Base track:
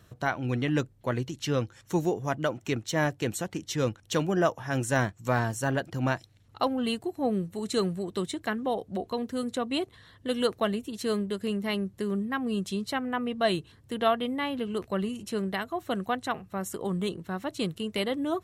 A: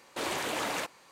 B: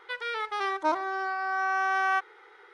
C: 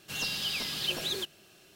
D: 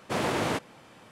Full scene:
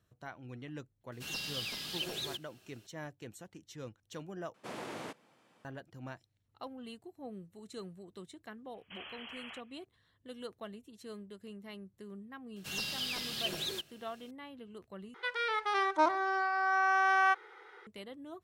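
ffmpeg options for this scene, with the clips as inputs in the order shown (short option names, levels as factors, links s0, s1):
-filter_complex "[3:a]asplit=2[s0][s1];[0:a]volume=0.126[s2];[4:a]highpass=150[s3];[1:a]lowpass=f=3000:t=q:w=0.5098,lowpass=f=3000:t=q:w=0.6013,lowpass=f=3000:t=q:w=0.9,lowpass=f=3000:t=q:w=2.563,afreqshift=-3500[s4];[s2]asplit=3[s5][s6][s7];[s5]atrim=end=4.544[s8];[s3]atrim=end=1.11,asetpts=PTS-STARTPTS,volume=0.188[s9];[s6]atrim=start=5.646:end=15.144[s10];[2:a]atrim=end=2.73,asetpts=PTS-STARTPTS,volume=0.891[s11];[s7]atrim=start=17.866[s12];[s0]atrim=end=1.75,asetpts=PTS-STARTPTS,volume=0.473,afade=t=in:d=0.004:c=hsin,afade=t=out:st=1.746:d=0.004:c=hsin,adelay=1120[s13];[s4]atrim=end=1.11,asetpts=PTS-STARTPTS,volume=0.188,afade=t=in:d=0.004:c=hsin,afade=t=out:st=1.106:d=0.004:c=hsin,adelay=385434S[s14];[s1]atrim=end=1.75,asetpts=PTS-STARTPTS,volume=0.596,afade=t=in:d=0.004:c=hsin,afade=t=out:st=1.746:d=0.004:c=hsin,adelay=12560[s15];[s8][s9]acrossfade=d=0.004:c1=hsin:c2=hsin[s16];[s16][s10]acrossfade=d=0.004:c1=hsin:c2=hsin[s17];[s17][s11]acrossfade=d=0.004:c1=hsin:c2=hsin[s18];[s18][s12]acrossfade=d=0.004:c1=hsin:c2=hsin[s19];[s19][s13][s14][s15]amix=inputs=4:normalize=0"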